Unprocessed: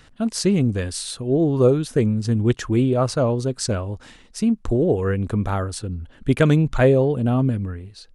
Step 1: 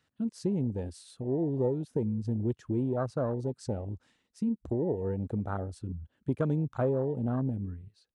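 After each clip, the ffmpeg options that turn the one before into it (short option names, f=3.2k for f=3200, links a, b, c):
-af "highpass=88,afwtdn=0.0794,acompressor=threshold=-24dB:ratio=2,volume=-6dB"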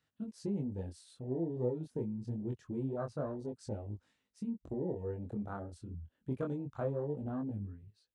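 -af "flanger=delay=19:depth=5.6:speed=0.26,volume=-4dB"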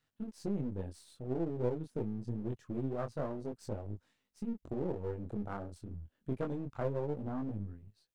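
-af "aeval=exprs='if(lt(val(0),0),0.447*val(0),val(0))':c=same,volume=2.5dB"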